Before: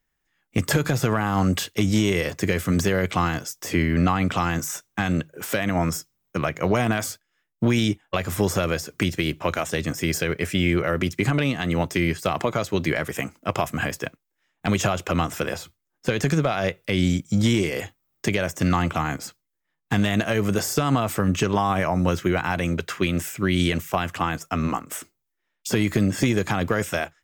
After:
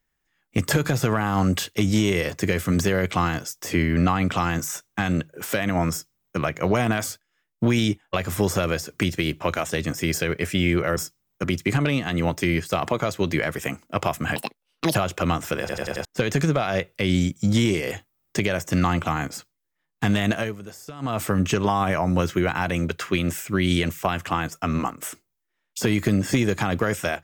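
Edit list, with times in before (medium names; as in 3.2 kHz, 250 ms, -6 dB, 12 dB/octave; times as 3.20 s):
5.91–6.38 s: copy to 10.97 s
13.89–14.84 s: speed 161%
15.49 s: stutter in place 0.09 s, 5 plays
20.25–21.08 s: dip -16.5 dB, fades 0.20 s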